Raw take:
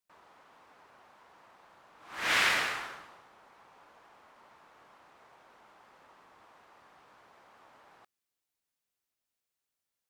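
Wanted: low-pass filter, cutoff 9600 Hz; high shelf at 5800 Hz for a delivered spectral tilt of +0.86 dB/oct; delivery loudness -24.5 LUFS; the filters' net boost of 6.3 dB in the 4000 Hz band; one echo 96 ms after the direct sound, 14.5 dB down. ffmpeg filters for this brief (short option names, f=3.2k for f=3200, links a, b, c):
-af "lowpass=9.6k,equalizer=f=4k:t=o:g=5.5,highshelf=f=5.8k:g=8,aecho=1:1:96:0.188,volume=1dB"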